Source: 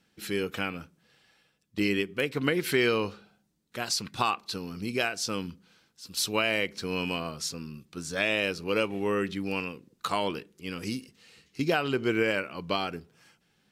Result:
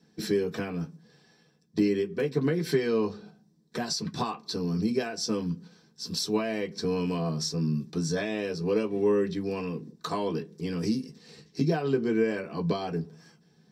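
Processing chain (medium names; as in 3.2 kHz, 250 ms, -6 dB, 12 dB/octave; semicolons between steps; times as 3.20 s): gate -55 dBFS, range -6 dB; compression 2.5:1, threshold -43 dBFS, peak gain reduction 14.5 dB; reverberation, pre-delay 3 ms, DRR 0 dB; trim -1.5 dB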